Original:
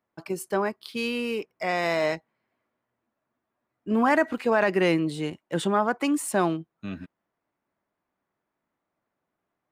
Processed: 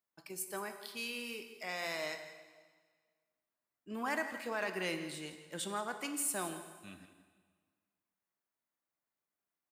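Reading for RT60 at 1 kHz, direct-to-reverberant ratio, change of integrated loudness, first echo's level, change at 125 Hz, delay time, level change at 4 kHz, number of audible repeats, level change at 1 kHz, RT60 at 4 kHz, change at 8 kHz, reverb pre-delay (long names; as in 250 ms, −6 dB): 1.6 s, 7.0 dB, −13.0 dB, −14.5 dB, −18.0 dB, 168 ms, −7.0 dB, 1, −14.5 dB, 1.5 s, −1.5 dB, 6 ms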